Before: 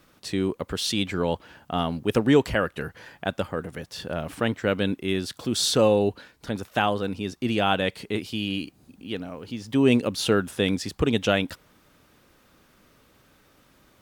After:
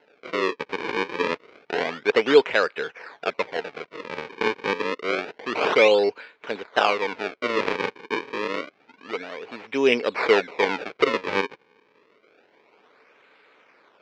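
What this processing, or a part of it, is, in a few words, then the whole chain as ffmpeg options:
circuit-bent sampling toy: -af "acrusher=samples=37:mix=1:aa=0.000001:lfo=1:lforange=59.2:lforate=0.28,highpass=440,equalizer=frequency=440:width_type=q:width=4:gain=8,equalizer=frequency=960:width_type=q:width=4:gain=3,equalizer=frequency=1500:width_type=q:width=4:gain=4,equalizer=frequency=2300:width_type=q:width=4:gain=10,lowpass=frequency=4700:width=0.5412,lowpass=frequency=4700:width=1.3066,volume=1.5dB"

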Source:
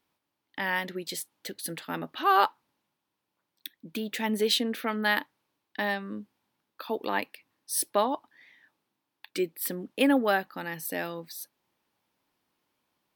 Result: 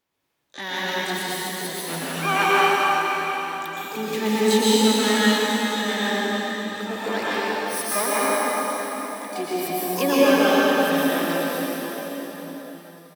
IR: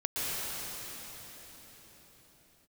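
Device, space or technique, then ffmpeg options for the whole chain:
shimmer-style reverb: -filter_complex "[0:a]asplit=3[link_01][link_02][link_03];[link_01]afade=type=out:start_time=3.86:duration=0.02[link_04];[link_02]adynamicequalizer=threshold=0.00794:dfrequency=210:dqfactor=2.7:tfrequency=210:tqfactor=2.7:attack=5:release=100:ratio=0.375:range=3:mode=boostabove:tftype=bell,afade=type=in:start_time=3.86:duration=0.02,afade=type=out:start_time=4.75:duration=0.02[link_05];[link_03]afade=type=in:start_time=4.75:duration=0.02[link_06];[link_04][link_05][link_06]amix=inputs=3:normalize=0,asplit=2[link_07][link_08];[link_08]adelay=169,lowpass=frequency=940:poles=1,volume=-13dB,asplit=2[link_09][link_10];[link_10]adelay=169,lowpass=frequency=940:poles=1,volume=0.17[link_11];[link_07][link_09][link_11]amix=inputs=3:normalize=0,asplit=2[link_12][link_13];[link_13]asetrate=88200,aresample=44100,atempo=0.5,volume=-4dB[link_14];[link_12][link_14]amix=inputs=2:normalize=0[link_15];[1:a]atrim=start_sample=2205[link_16];[link_15][link_16]afir=irnorm=-1:irlink=0,volume=-2dB"

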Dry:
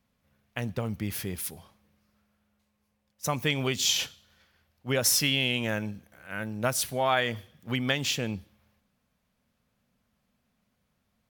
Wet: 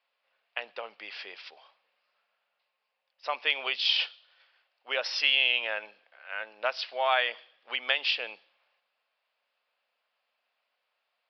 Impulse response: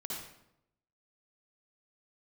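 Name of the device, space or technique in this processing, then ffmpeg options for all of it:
musical greeting card: -af "aresample=11025,aresample=44100,highpass=frequency=570:width=0.5412,highpass=frequency=570:width=1.3066,equalizer=frequency=2700:width_type=o:width=0.35:gain=6"

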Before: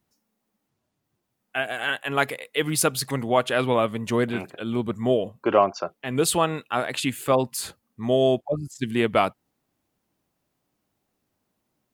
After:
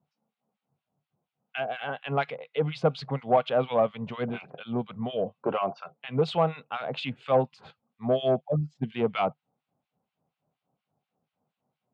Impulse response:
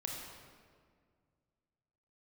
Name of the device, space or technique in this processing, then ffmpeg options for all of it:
guitar amplifier with harmonic tremolo: -filter_complex "[0:a]acrossover=split=1300[link_01][link_02];[link_01]aeval=exprs='val(0)*(1-1/2+1/2*cos(2*PI*4.2*n/s))':channel_layout=same[link_03];[link_02]aeval=exprs='val(0)*(1-1/2-1/2*cos(2*PI*4.2*n/s))':channel_layout=same[link_04];[link_03][link_04]amix=inputs=2:normalize=0,asoftclip=type=tanh:threshold=-15.5dB,highpass=110,equalizer=frequency=150:width_type=q:width=4:gain=9,equalizer=frequency=330:width_type=q:width=4:gain=-9,equalizer=frequency=500:width_type=q:width=4:gain=4,equalizer=frequency=750:width_type=q:width=4:gain=7,equalizer=frequency=1800:width_type=q:width=4:gain=-8,lowpass=frequency=3500:width=0.5412,lowpass=frequency=3500:width=1.3066"

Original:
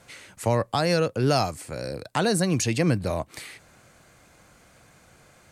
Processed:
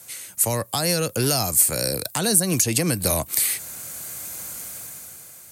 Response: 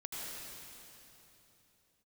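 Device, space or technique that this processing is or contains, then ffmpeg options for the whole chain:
FM broadcast chain: -filter_complex "[0:a]highpass=52,dynaudnorm=framelen=200:gausssize=9:maxgain=12dB,acrossover=split=280|1500[link_01][link_02][link_03];[link_01]acompressor=threshold=-20dB:ratio=4[link_04];[link_02]acompressor=threshold=-21dB:ratio=4[link_05];[link_03]acompressor=threshold=-28dB:ratio=4[link_06];[link_04][link_05][link_06]amix=inputs=3:normalize=0,aemphasis=mode=production:type=50fm,alimiter=limit=-11.5dB:level=0:latency=1:release=149,asoftclip=type=hard:threshold=-13.5dB,lowpass=frequency=15000:width=0.5412,lowpass=frequency=15000:width=1.3066,aemphasis=mode=production:type=50fm,volume=-2dB"

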